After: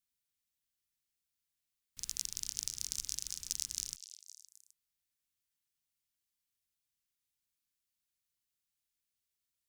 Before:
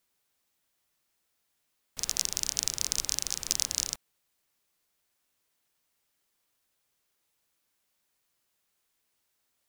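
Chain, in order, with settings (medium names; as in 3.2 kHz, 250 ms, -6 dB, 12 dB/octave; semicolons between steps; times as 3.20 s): amplifier tone stack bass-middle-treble 6-0-2; repeats whose band climbs or falls 258 ms, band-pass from 3.7 kHz, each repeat 0.7 oct, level -11 dB; dynamic bell 9.4 kHz, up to +3 dB, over -58 dBFS, Q 0.77; trim +4 dB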